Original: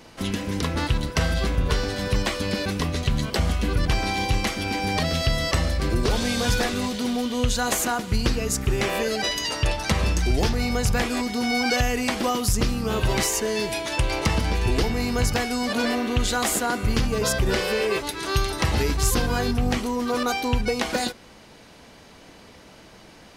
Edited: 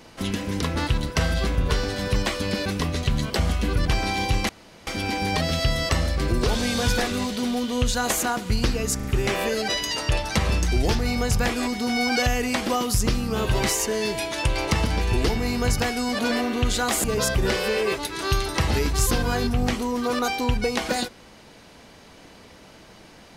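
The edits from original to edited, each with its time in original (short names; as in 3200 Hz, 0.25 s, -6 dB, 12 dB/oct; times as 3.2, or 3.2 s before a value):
4.49 insert room tone 0.38 s
8.58 stutter 0.04 s, 3 plays
16.58–17.08 cut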